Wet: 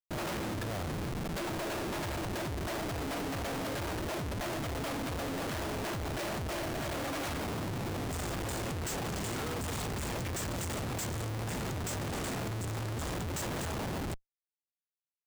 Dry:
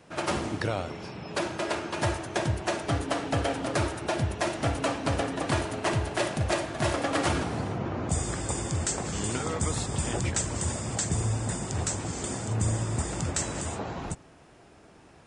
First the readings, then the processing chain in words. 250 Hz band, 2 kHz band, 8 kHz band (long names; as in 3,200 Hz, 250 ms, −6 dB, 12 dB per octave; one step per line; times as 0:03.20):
−5.0 dB, −5.5 dB, −9.0 dB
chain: echo with shifted repeats 147 ms, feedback 46%, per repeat −41 Hz, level −18.5 dB
comparator with hysteresis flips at −36.5 dBFS
level −5.5 dB